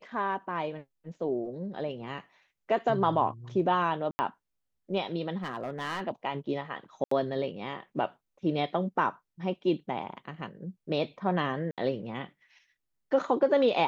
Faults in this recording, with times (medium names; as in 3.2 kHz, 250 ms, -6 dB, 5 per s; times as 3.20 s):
4.11–4.19 s: dropout 80 ms
5.43–6.02 s: clipped -29 dBFS
7.04–7.11 s: dropout 74 ms
11.71–11.78 s: dropout 67 ms